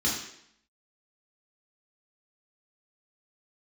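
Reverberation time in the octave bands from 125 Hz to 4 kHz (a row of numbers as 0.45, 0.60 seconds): 0.65, 0.75, 0.70, 0.70, 0.70, 0.70 seconds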